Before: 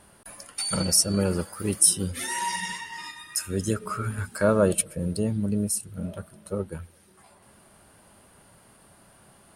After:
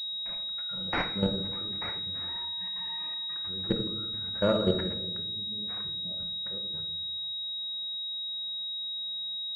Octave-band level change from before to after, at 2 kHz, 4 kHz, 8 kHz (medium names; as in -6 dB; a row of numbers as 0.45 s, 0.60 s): -5.0 dB, +7.0 dB, under -40 dB